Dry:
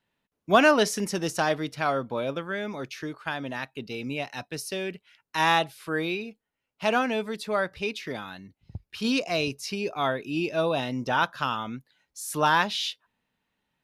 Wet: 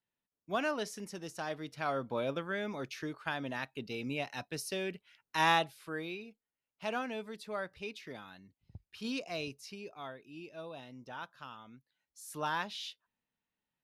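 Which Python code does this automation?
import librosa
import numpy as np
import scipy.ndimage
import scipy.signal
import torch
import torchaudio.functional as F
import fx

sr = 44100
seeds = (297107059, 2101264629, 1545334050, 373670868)

y = fx.gain(x, sr, db=fx.line((1.37, -15.0), (2.16, -5.0), (5.5, -5.0), (6.03, -12.0), (9.45, -12.0), (10.21, -20.0), (11.65, -20.0), (12.28, -13.0)))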